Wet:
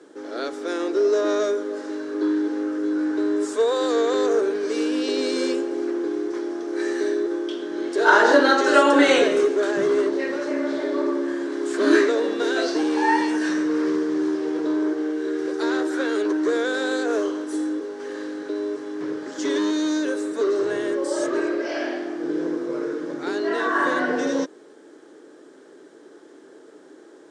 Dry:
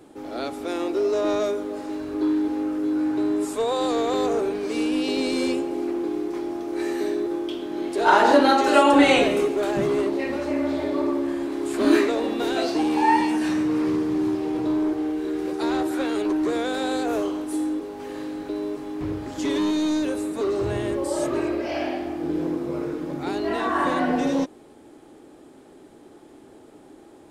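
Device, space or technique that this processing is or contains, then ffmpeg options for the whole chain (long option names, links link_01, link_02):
television speaker: -af "highpass=frequency=210:width=0.5412,highpass=frequency=210:width=1.3066,equalizer=frequency=230:width_type=q:width=4:gain=-8,equalizer=frequency=450:width_type=q:width=4:gain=5,equalizer=frequency=780:width_type=q:width=4:gain=-8,equalizer=frequency=1600:width_type=q:width=4:gain=8,equalizer=frequency=2500:width_type=q:width=4:gain=-6,equalizer=frequency=5800:width_type=q:width=4:gain=5,lowpass=frequency=8600:width=0.5412,lowpass=frequency=8600:width=1.3066,volume=1dB"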